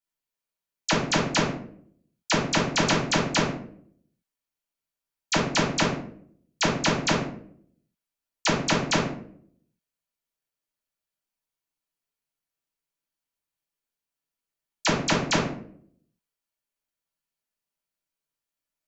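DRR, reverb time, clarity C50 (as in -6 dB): -5.0 dB, 0.60 s, 5.0 dB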